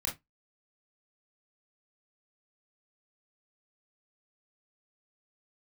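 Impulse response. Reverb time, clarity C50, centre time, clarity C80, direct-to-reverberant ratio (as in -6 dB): 0.15 s, 12.0 dB, 23 ms, 23.5 dB, -3.0 dB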